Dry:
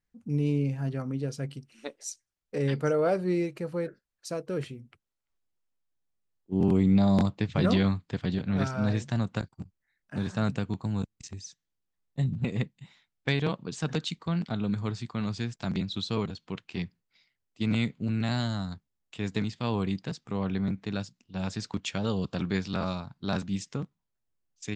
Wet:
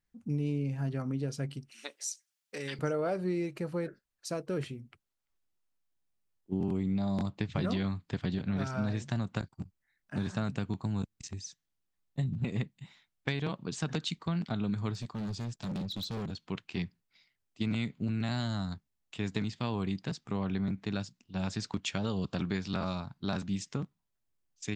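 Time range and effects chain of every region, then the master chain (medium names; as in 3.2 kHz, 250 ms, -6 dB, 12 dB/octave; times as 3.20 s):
1.71–2.79 s: Bessel high-pass 160 Hz + tilt shelf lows -8 dB, about 1.1 kHz + compression 2.5:1, threshold -35 dBFS
14.94–16.32 s: band-stop 2.1 kHz, Q 17 + dynamic bell 1.9 kHz, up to -5 dB, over -50 dBFS, Q 0.75 + overload inside the chain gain 33 dB
whole clip: peaking EQ 490 Hz -4 dB 0.22 oct; compression, threshold -28 dBFS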